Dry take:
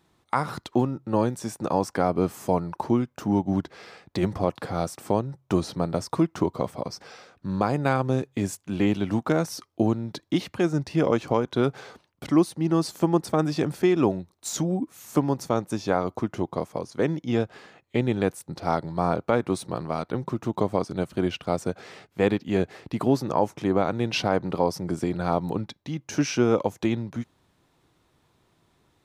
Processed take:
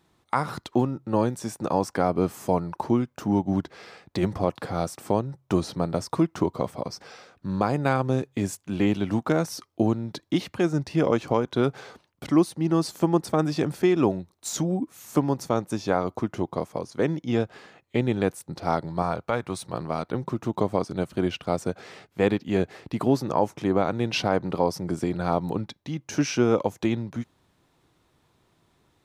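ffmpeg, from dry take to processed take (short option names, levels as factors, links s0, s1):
-filter_complex "[0:a]asettb=1/sr,asplit=3[s0][s1][s2];[s0]atrim=end=19.024[s3];[s1]atrim=start=19.02:end=19.74,asetpts=PTS-STARTPTS,afade=t=in:d=0.004:c=qsin,afade=t=out:st=0.716:d=0.004:c=qsin,equalizer=f=300:t=o:w=1.8:g=-8[s4];[s2]atrim=start=19.736[s5];[s3][s4]acrossfade=d=0.004:c1=hsin:c2=qsin[s6];[s6][s5]acrossfade=d=0.004:c1=qsin:c2=hsin"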